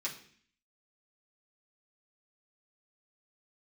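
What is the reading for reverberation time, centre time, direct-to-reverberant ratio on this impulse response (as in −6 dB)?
0.55 s, 18 ms, −6.5 dB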